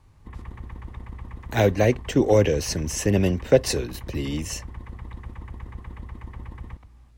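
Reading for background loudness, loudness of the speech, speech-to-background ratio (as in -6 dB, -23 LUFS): -40.0 LUFS, -23.0 LUFS, 17.0 dB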